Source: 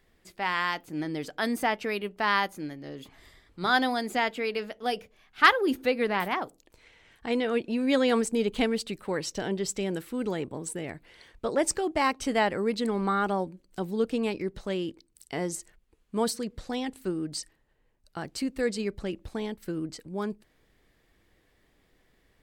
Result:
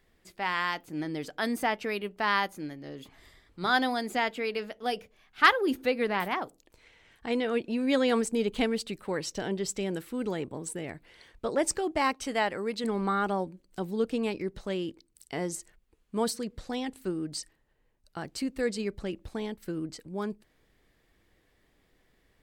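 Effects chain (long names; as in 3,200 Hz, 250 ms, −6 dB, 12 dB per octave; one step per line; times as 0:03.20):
0:12.14–0:12.84: low-shelf EQ 400 Hz −6.5 dB
level −1.5 dB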